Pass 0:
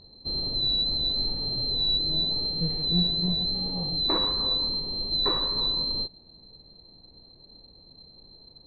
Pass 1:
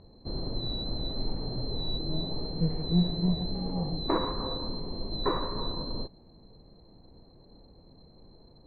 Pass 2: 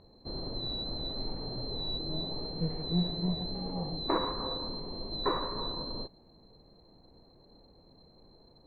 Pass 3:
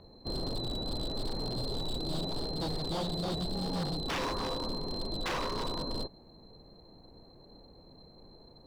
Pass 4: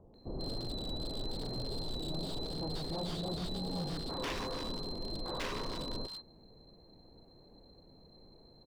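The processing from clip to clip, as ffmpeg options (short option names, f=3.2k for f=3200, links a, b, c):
-af "lowpass=1.7k,volume=2.5dB"
-af "lowshelf=f=290:g=-7"
-filter_complex "[0:a]acrossover=split=320|1700[a][b][c];[c]alimiter=level_in=17.5dB:limit=-24dB:level=0:latency=1:release=128,volume=-17.5dB[d];[a][b][d]amix=inputs=3:normalize=0,aeval=exprs='0.0251*(abs(mod(val(0)/0.0251+3,4)-2)-1)':c=same,volume=4dB"
-filter_complex "[0:a]acrossover=split=1100[a][b];[b]adelay=140[c];[a][c]amix=inputs=2:normalize=0,volume=-3.5dB"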